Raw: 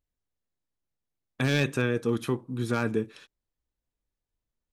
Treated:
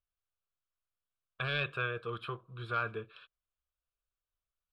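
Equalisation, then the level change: low-pass 3.1 kHz 12 dB/octave; resonant low shelf 680 Hz -8 dB, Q 1.5; static phaser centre 1.3 kHz, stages 8; 0.0 dB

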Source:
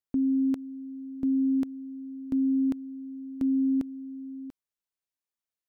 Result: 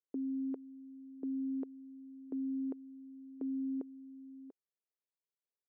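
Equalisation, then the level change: ladder band-pass 480 Hz, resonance 55%; +4.5 dB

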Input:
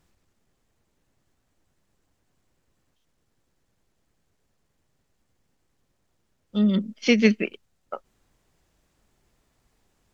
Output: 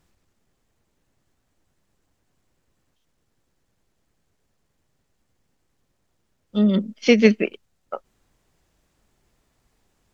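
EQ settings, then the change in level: dynamic bell 580 Hz, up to +6 dB, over -34 dBFS, Q 0.75; +1.0 dB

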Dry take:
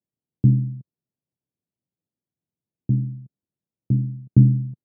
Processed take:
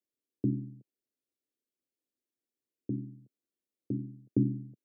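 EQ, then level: Chebyshev high-pass 220 Hz, order 2; static phaser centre 400 Hz, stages 4; 0.0 dB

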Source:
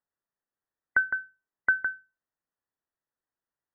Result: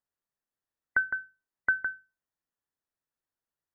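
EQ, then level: bass shelf 190 Hz +4 dB; -2.5 dB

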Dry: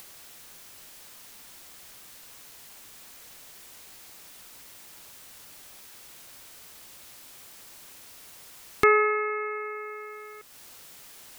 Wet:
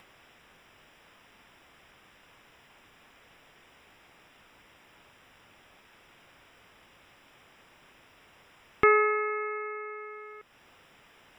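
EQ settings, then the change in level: Savitzky-Golay filter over 25 samples; -1.5 dB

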